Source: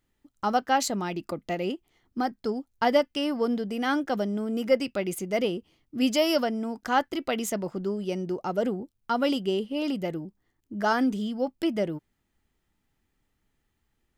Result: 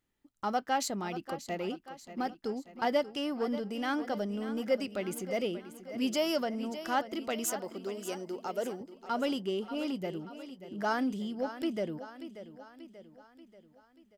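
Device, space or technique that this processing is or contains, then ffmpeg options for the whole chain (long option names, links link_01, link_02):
parallel distortion: -filter_complex "[0:a]asettb=1/sr,asplit=3[link_01][link_02][link_03];[link_01]atrim=end=7.444[link_04];[link_02]atrim=start=7.44:end=8.81,asetpts=PTS-STARTPTS,afade=type=in:duration=0.004:curve=qsin,afade=type=out:start_time=1.366:duration=0.004:curve=qsin,bass=frequency=250:gain=-12,treble=frequency=4000:gain=7[link_05];[link_03]atrim=start=8.806[link_06];[link_04][link_05]acrossfade=duration=0.004:curve1=hsin:curve2=qsin[link_07];[link_07][link_06]acrossfade=duration=0.004:curve1=qsin:curve2=hsin,aecho=1:1:585|1170|1755|2340|2925:0.211|0.11|0.0571|0.0297|0.0155,asplit=2[link_08][link_09];[link_09]asoftclip=type=hard:threshold=-27dB,volume=-10dB[link_10];[link_08][link_10]amix=inputs=2:normalize=0,lowshelf=frequency=93:gain=-6,volume=-7.5dB"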